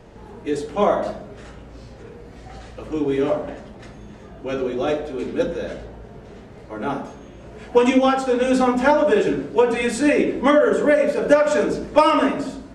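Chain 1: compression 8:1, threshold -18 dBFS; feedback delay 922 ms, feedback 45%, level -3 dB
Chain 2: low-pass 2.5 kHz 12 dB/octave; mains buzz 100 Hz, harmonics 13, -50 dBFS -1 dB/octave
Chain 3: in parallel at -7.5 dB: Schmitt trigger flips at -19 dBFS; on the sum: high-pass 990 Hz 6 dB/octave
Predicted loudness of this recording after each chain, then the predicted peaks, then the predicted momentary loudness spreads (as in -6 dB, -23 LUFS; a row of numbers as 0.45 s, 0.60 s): -23.5 LUFS, -20.0 LUFS, -24.0 LUFS; -7.0 dBFS, -2.5 dBFS, -4.5 dBFS; 12 LU, 18 LU, 16 LU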